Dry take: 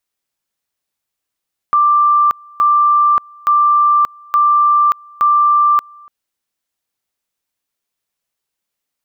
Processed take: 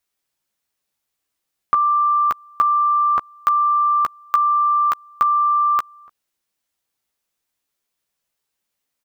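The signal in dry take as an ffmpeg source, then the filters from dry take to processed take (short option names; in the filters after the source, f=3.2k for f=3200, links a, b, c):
-f lavfi -i "aevalsrc='pow(10,(-8-28.5*gte(mod(t,0.87),0.58))/20)*sin(2*PI*1180*t)':d=4.35:s=44100"
-filter_complex "[0:a]asplit=2[a][b];[b]adelay=14,volume=-6.5dB[c];[a][c]amix=inputs=2:normalize=0"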